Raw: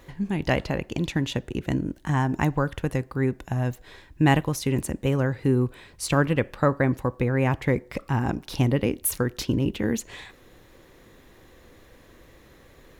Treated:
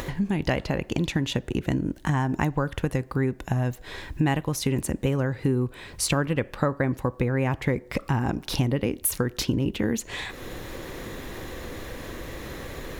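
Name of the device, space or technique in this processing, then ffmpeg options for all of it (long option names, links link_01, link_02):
upward and downward compression: -af "acompressor=mode=upward:threshold=-34dB:ratio=2.5,acompressor=threshold=-31dB:ratio=3,volume=7.5dB"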